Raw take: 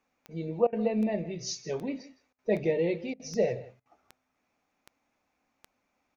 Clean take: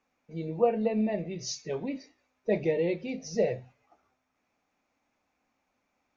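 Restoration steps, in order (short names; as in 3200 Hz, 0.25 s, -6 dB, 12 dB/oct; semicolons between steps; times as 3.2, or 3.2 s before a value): de-click; interpolate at 0.67/2.33/3.14/3.8, 55 ms; inverse comb 0.161 s -18 dB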